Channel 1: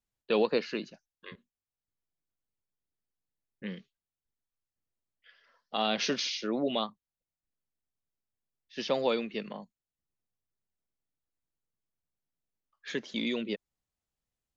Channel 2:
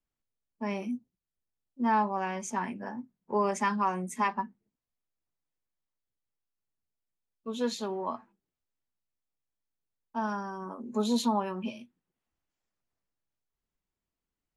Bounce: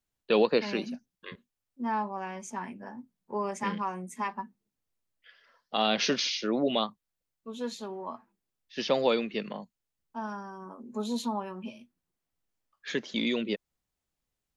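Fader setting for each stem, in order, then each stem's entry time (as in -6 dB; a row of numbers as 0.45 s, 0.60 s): +3.0 dB, -4.5 dB; 0.00 s, 0.00 s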